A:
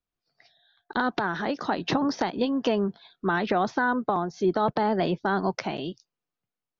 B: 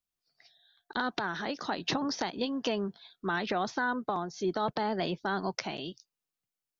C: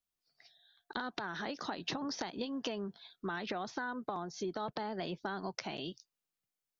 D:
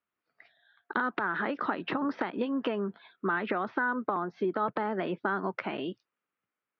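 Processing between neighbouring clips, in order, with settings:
high-shelf EQ 2,800 Hz +11.5 dB; level −7.5 dB
downward compressor, threshold −33 dBFS, peak gain reduction 7.5 dB; level −1.5 dB
loudspeaker in its box 140–2,400 Hz, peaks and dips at 150 Hz −8 dB, 740 Hz −5 dB, 1,300 Hz +5 dB; level +9 dB

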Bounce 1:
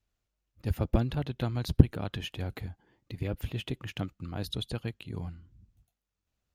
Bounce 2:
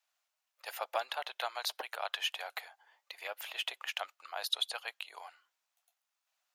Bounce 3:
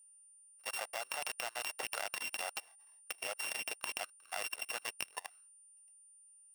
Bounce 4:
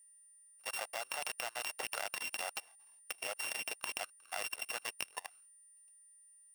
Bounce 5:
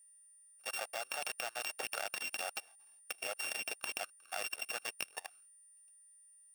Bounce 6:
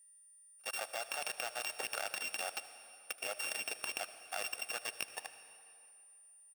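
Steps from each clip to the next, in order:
Butterworth high-pass 670 Hz 36 dB per octave; level +5.5 dB
samples sorted by size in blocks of 16 samples; steady tone 9,200 Hz −50 dBFS; output level in coarse steps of 23 dB; level +7 dB
floating-point word with a short mantissa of 2 bits
notch comb filter 1,000 Hz; level +1 dB
single-tap delay 76 ms −22.5 dB; on a send at −12.5 dB: convolution reverb RT60 2.7 s, pre-delay 73 ms

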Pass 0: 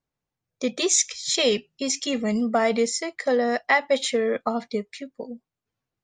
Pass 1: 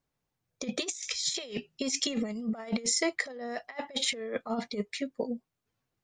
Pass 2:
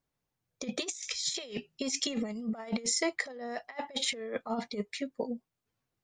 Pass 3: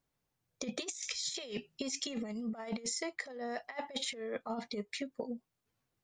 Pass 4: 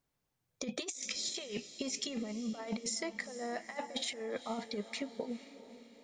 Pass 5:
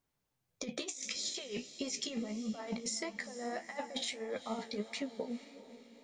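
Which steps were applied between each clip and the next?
compressor whose output falls as the input rises −28 dBFS, ratio −0.5; level −3.5 dB
dynamic equaliser 880 Hz, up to +4 dB, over −49 dBFS, Q 3.2; level −2 dB
downward compressor, threshold −36 dBFS, peak gain reduction 10 dB; level +1 dB
feedback delay with all-pass diffusion 455 ms, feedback 48%, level −14 dB
flanger 1.6 Hz, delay 9.5 ms, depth 8.2 ms, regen +48%; level +3.5 dB

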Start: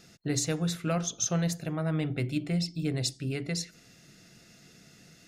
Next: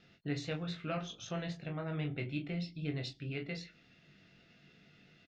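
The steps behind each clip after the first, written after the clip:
transistor ladder low-pass 3,900 Hz, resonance 35%
pitch vibrato 8.9 Hz 31 cents
ambience of single reflections 21 ms −4.5 dB, 40 ms −11 dB
level −1 dB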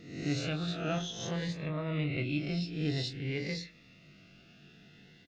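peak hold with a rise ahead of every peak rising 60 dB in 0.73 s
phaser whose notches keep moving one way rising 0.51 Hz
level +4 dB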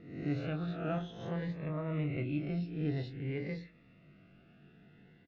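low-pass filter 1,700 Hz 12 dB per octave
level −1.5 dB

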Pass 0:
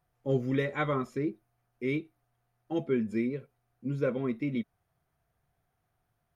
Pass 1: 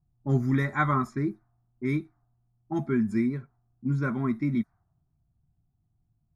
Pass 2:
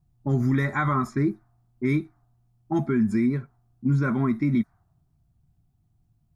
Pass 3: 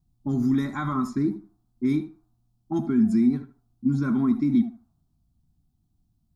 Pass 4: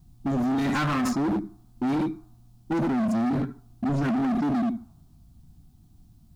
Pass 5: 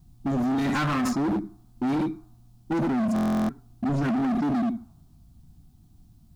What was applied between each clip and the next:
low-pass that shuts in the quiet parts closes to 300 Hz, open at −27.5 dBFS; phaser with its sweep stopped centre 1,200 Hz, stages 4; level +8.5 dB
brickwall limiter −21 dBFS, peak gain reduction 9 dB; level +6 dB
octave-band graphic EQ 125/250/500/2,000/4,000 Hz −8/+7/−11/−12/+4 dB; tape delay 77 ms, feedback 22%, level −10.5 dB, low-pass 2,300 Hz
in parallel at +3 dB: compressor whose output falls as the input rises −32 dBFS, ratio −1; on the sum: hard clipping −25 dBFS, distortion −7 dB; level +2 dB
buffer that repeats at 0:03.14, samples 1,024, times 14

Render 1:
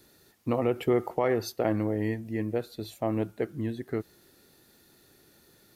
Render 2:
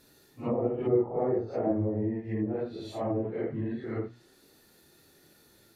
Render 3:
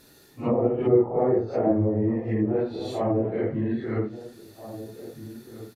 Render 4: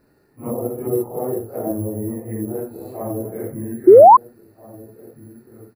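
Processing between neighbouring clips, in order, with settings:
random phases in long frames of 200 ms; mains-hum notches 60/120/180/240 Hz; treble cut that deepens with the level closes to 660 Hz, closed at −25 dBFS
slap from a distant wall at 280 metres, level −13 dB; level +6 dB
bad sample-rate conversion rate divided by 4×, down filtered, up zero stuff; sound drawn into the spectrogram rise, 0:03.87–0:04.17, 340–1,100 Hz −3 dBFS; moving average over 13 samples; level −2 dB

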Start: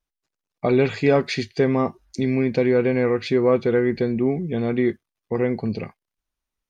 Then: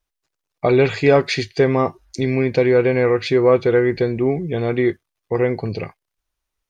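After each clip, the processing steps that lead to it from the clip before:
parametric band 220 Hz −10.5 dB 0.5 octaves
level +5 dB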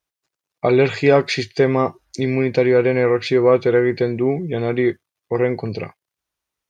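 high-pass filter 92 Hz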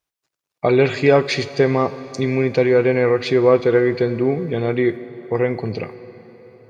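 dense smooth reverb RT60 4.7 s, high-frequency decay 0.8×, DRR 14 dB

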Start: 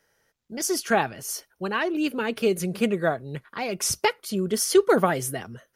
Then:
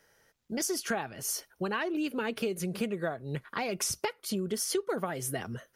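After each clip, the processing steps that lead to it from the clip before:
downward compressor 6 to 1, threshold −32 dBFS, peak gain reduction 18 dB
level +2.5 dB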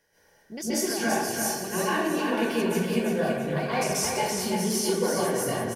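Butterworth band-reject 1,300 Hz, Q 5.7
repeating echo 335 ms, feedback 41%, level −5 dB
dense smooth reverb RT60 0.93 s, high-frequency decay 0.55×, pre-delay 120 ms, DRR −10 dB
level −4.5 dB

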